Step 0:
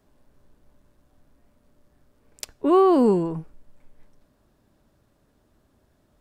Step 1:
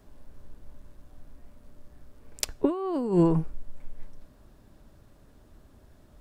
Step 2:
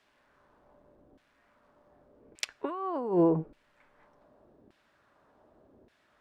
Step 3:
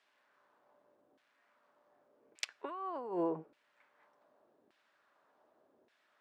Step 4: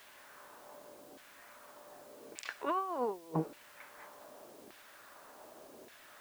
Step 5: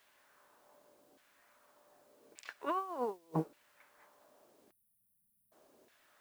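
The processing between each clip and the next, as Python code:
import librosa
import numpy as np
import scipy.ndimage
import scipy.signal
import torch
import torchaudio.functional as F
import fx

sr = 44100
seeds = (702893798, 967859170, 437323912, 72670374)

y1 = fx.low_shelf(x, sr, hz=69.0, db=10.5)
y1 = fx.over_compress(y1, sr, threshold_db=-22.0, ratio=-0.5)
y2 = fx.filter_lfo_bandpass(y1, sr, shape='saw_down', hz=0.85, low_hz=350.0, high_hz=2700.0, q=1.3)
y2 = y2 * 10.0 ** (3.5 / 20.0)
y3 = fx.weighting(y2, sr, curve='A')
y3 = y3 * 10.0 ** (-5.5 / 20.0)
y4 = fx.over_compress(y3, sr, threshold_db=-45.0, ratio=-0.5)
y4 = fx.quant_dither(y4, sr, seeds[0], bits=12, dither='triangular')
y4 = y4 * 10.0 ** (9.5 / 20.0)
y5 = fx.spec_erase(y4, sr, start_s=4.71, length_s=0.81, low_hz=230.0, high_hz=9000.0)
y5 = fx.upward_expand(y5, sr, threshold_db=-53.0, expansion=1.5)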